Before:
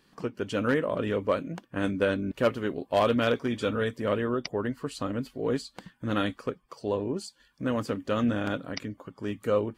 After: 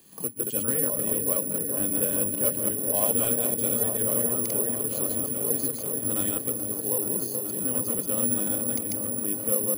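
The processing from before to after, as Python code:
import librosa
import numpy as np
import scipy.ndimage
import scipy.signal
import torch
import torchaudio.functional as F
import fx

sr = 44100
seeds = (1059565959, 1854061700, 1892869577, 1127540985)

y = fx.reverse_delay(x, sr, ms=112, wet_db=-1.0)
y = scipy.signal.sosfilt(scipy.signal.butter(2, 69.0, 'highpass', fs=sr, output='sos'), y)
y = fx.peak_eq(y, sr, hz=1500.0, db=-9.0, octaves=1.0)
y = fx.echo_opening(y, sr, ms=429, hz=750, octaves=1, feedback_pct=70, wet_db=-6)
y = (np.kron(scipy.signal.resample_poly(y, 1, 4), np.eye(4)[0]) * 4)[:len(y)]
y = fx.band_squash(y, sr, depth_pct=40)
y = y * 10.0 ** (-7.0 / 20.0)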